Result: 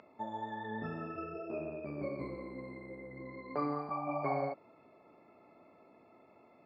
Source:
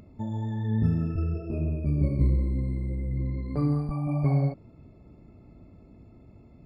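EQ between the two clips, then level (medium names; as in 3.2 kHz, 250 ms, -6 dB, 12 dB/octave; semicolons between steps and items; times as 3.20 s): high-pass 850 Hz 12 dB/octave; low-pass 1.4 kHz 6 dB/octave; distance through air 91 m; +9.5 dB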